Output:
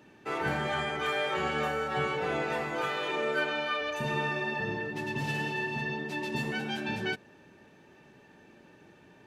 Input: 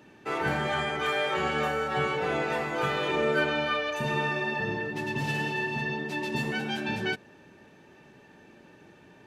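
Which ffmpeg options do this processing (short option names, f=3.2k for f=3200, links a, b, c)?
-filter_complex "[0:a]asettb=1/sr,asplit=3[a][b][c];[a]atrim=end=2.814[d];[b]atrim=start=2.81:end=3.81,asetpts=PTS-STARTPTS,afade=t=in:d=0.004:c=qsin,afade=t=out:st=0.996:d=0.004:c=qsin,highpass=f=410:p=1[e];[c]atrim=start=3.806[f];[d][e]acrossfade=d=0.004:c1=hsin:c2=qsin[g];[g][f]acrossfade=d=0.004:c1=qsin:c2=hsin,volume=-2.5dB"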